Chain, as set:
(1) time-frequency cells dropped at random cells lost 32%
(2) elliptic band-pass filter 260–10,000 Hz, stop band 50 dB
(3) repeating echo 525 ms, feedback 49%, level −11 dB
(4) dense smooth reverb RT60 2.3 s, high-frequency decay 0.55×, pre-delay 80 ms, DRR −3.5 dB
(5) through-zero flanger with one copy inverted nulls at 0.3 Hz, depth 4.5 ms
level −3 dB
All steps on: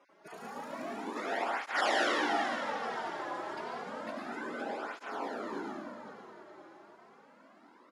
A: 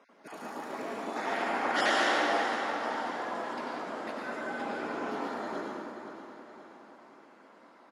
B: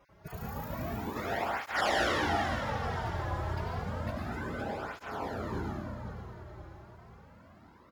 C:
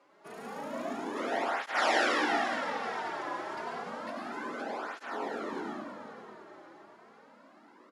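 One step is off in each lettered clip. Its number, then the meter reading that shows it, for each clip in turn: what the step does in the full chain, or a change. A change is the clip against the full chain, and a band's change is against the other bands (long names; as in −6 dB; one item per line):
5, change in integrated loudness +3.0 LU
2, 125 Hz band +22.5 dB
1, change in momentary loudness spread −1 LU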